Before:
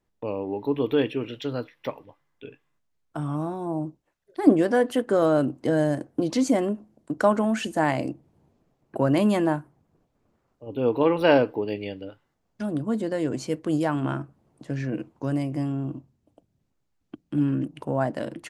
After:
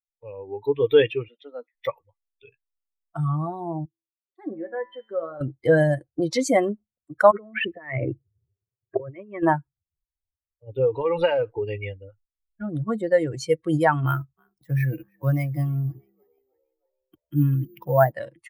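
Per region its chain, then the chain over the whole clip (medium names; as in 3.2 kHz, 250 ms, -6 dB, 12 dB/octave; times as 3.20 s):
1.28–1.75 s: rippled Chebyshev high-pass 180 Hz, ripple 6 dB + treble shelf 2.7 kHz -9 dB
3.85–5.41 s: low-pass that closes with the level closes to 2.3 kHz, closed at -18.5 dBFS + feedback comb 110 Hz, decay 1 s, mix 80%
7.31–9.43 s: compressor with a negative ratio -30 dBFS + cabinet simulation 100–2500 Hz, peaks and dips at 110 Hz +9 dB, 160 Hz -5 dB, 410 Hz +6 dB, 830 Hz -10 dB, 1.5 kHz -4 dB
10.79–12.70 s: level-controlled noise filter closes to 1.3 kHz, open at -16 dBFS + compression 12:1, threshold -22 dBFS + bass shelf 64 Hz +5.5 dB
14.06–18.12 s: treble shelf 7.7 kHz +6.5 dB + frequency-shifting echo 315 ms, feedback 61%, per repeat +62 Hz, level -18 dB + careless resampling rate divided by 3×, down none, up hold
whole clip: expander on every frequency bin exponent 2; level rider gain up to 13.5 dB; graphic EQ 125/250/500/1000/2000 Hz +6/-10/+6/+4/+7 dB; trim -5.5 dB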